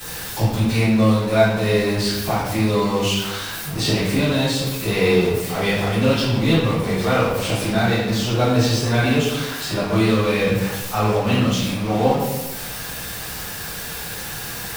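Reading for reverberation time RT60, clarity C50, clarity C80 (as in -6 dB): 1.1 s, 0.0 dB, 3.5 dB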